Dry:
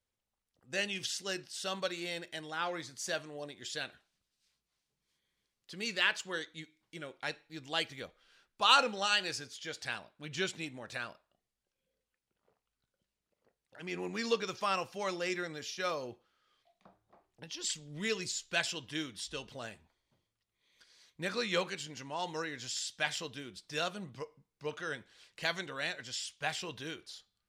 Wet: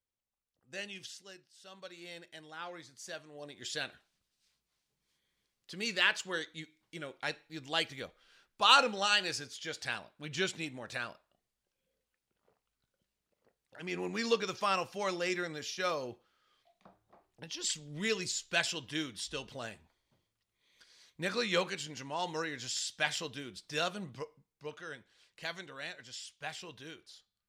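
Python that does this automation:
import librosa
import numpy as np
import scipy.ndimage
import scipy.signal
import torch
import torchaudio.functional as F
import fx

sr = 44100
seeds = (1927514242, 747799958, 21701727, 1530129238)

y = fx.gain(x, sr, db=fx.line((0.97, -7.5), (1.52, -19.0), (2.11, -8.0), (3.24, -8.0), (3.64, 1.5), (24.15, 1.5), (24.8, -6.0)))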